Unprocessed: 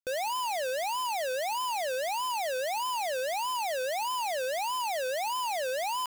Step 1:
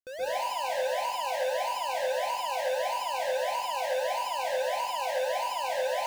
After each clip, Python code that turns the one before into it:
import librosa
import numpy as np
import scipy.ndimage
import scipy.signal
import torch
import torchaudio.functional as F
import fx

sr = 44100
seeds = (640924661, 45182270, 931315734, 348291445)

y = fx.high_shelf(x, sr, hz=5900.0, db=-7.0)
y = fx.rev_plate(y, sr, seeds[0], rt60_s=0.87, hf_ratio=0.95, predelay_ms=115, drr_db=-8.5)
y = y * librosa.db_to_amplitude(-8.0)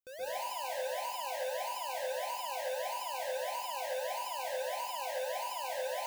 y = fx.high_shelf(x, sr, hz=9100.0, db=11.5)
y = y * librosa.db_to_amplitude(-7.5)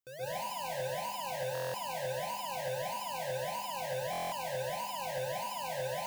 y = fx.octave_divider(x, sr, octaves=2, level_db=1.0)
y = fx.buffer_glitch(y, sr, at_s=(1.53, 4.11), block=1024, repeats=8)